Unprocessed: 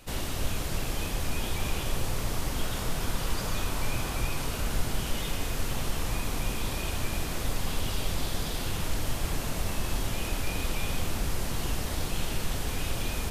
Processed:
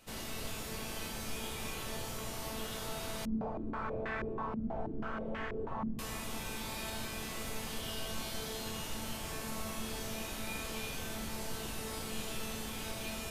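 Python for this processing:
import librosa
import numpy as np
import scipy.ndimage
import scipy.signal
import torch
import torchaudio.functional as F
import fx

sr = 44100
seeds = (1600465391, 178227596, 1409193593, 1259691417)

y = fx.low_shelf(x, sr, hz=76.0, db=-11.0)
y = fx.comb_fb(y, sr, f0_hz=220.0, decay_s=1.1, harmonics='all', damping=0.0, mix_pct=90)
y = fx.filter_held_lowpass(y, sr, hz=6.2, low_hz=230.0, high_hz=1800.0, at=(3.25, 5.99))
y = y * librosa.db_to_amplitude(10.0)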